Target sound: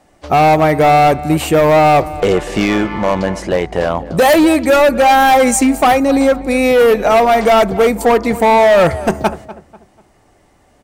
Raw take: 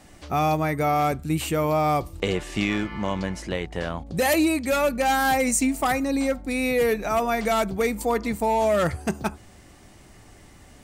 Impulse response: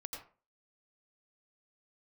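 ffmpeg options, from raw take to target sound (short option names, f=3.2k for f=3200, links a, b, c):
-filter_complex "[0:a]agate=range=-14dB:threshold=-41dB:ratio=16:detection=peak,equalizer=f=660:t=o:w=2.1:g=9.5,asoftclip=type=hard:threshold=-14dB,asplit=2[a][b];[b]adelay=245,lowpass=f=2.2k:p=1,volume=-16dB,asplit=2[c][d];[d]adelay=245,lowpass=f=2.2k:p=1,volume=0.37,asplit=2[e][f];[f]adelay=245,lowpass=f=2.2k:p=1,volume=0.37[g];[c][e][g]amix=inputs=3:normalize=0[h];[a][h]amix=inputs=2:normalize=0,volume=7.5dB"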